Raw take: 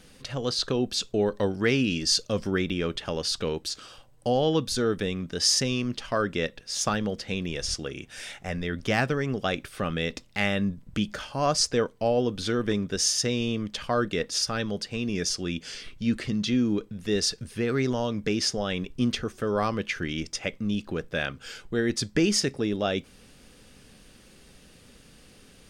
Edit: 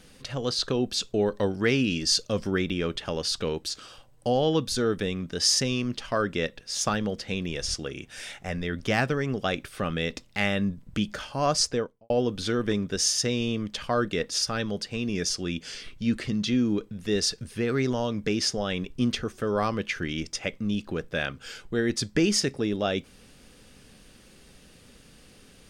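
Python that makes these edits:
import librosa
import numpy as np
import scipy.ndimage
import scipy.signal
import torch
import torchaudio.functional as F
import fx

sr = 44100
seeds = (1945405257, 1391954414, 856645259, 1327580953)

y = fx.studio_fade_out(x, sr, start_s=11.61, length_s=0.49)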